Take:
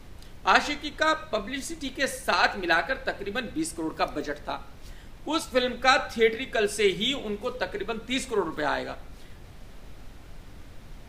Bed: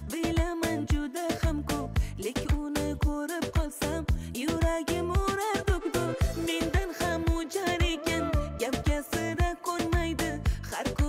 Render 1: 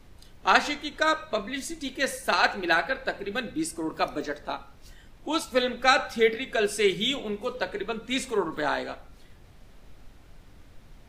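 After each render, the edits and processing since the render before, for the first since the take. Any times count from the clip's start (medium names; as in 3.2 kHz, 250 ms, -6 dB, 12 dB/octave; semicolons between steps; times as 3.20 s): noise print and reduce 6 dB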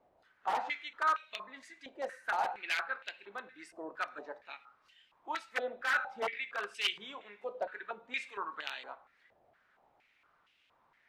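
integer overflow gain 14 dB; step-sequenced band-pass 4.3 Hz 670–2800 Hz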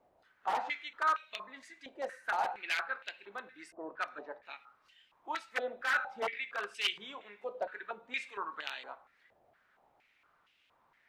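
3.72–4.43 s: level-controlled noise filter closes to 1 kHz, open at -33.5 dBFS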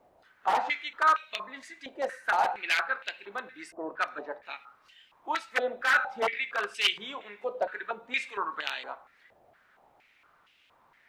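trim +7 dB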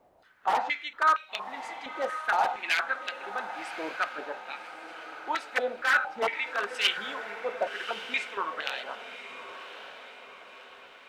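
echo that smears into a reverb 1115 ms, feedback 50%, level -11 dB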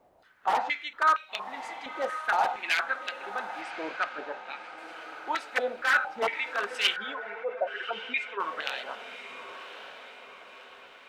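3.61–4.78 s: distance through air 58 m; 6.96–8.40 s: spectral contrast enhancement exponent 1.5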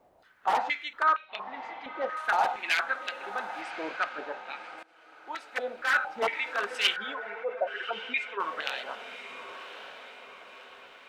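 1.02–2.17 s: distance through air 220 m; 4.83–6.19 s: fade in, from -22 dB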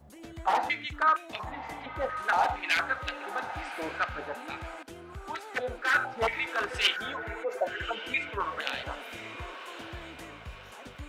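add bed -17 dB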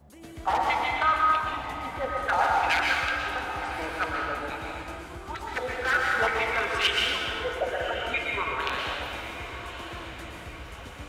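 plate-style reverb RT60 1.7 s, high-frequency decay 0.95×, pre-delay 105 ms, DRR -1.5 dB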